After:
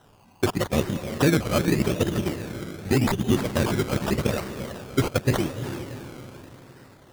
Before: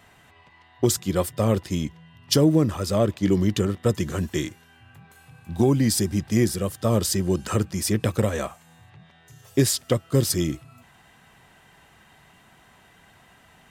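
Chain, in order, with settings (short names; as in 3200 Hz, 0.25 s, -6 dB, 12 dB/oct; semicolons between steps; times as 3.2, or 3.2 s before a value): diffused feedback echo 0.704 s, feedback 51%, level -9 dB; decimation with a swept rate 19×, swing 60% 0.44 Hz; granular stretch 0.52×, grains 30 ms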